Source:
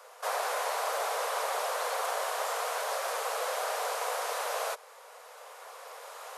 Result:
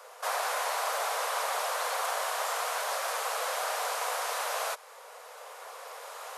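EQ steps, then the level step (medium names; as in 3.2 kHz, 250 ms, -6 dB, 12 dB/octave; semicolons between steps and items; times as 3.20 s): dynamic bell 400 Hz, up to -7 dB, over -49 dBFS, Q 1; +2.5 dB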